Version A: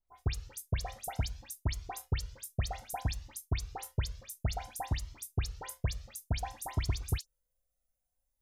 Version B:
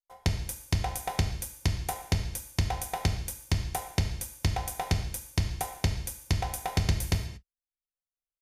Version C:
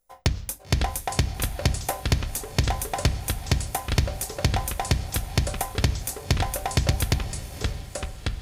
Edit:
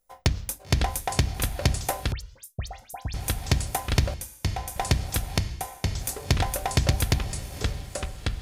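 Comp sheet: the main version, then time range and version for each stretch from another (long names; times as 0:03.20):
C
0:02.12–0:03.14: punch in from A
0:04.14–0:04.76: punch in from B
0:05.38–0:05.95: punch in from B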